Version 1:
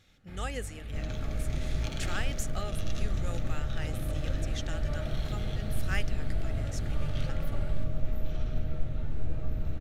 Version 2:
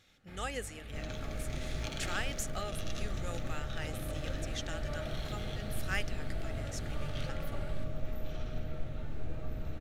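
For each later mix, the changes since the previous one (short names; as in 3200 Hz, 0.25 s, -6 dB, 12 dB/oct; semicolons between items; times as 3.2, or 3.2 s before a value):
master: add low shelf 210 Hz -8 dB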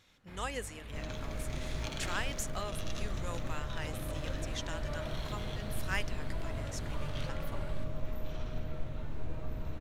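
master: remove Butterworth band-stop 1000 Hz, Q 5.1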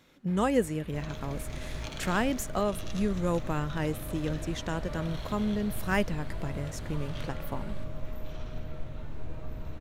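speech: remove band-pass 4700 Hz, Q 0.55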